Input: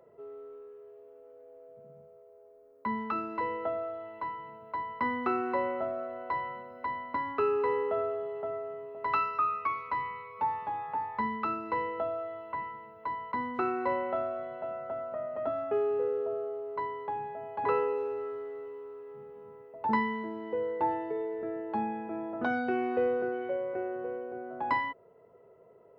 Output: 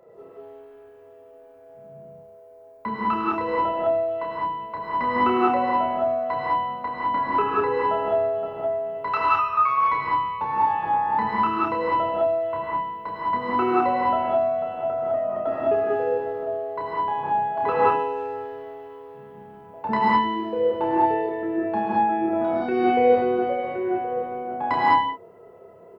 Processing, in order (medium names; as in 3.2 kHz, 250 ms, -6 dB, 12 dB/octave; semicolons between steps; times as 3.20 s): 6.71–7.61 s: low-pass that closes with the level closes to 2.3 kHz, closed at -25 dBFS; 9.09–9.78 s: peaking EQ 260 Hz -13.5 dB 1.1 oct; 22.12–22.68 s: compressor with a negative ratio -37 dBFS, ratio -1; doubling 30 ms -4 dB; gated-style reverb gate 230 ms rising, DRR -5.5 dB; trim +4 dB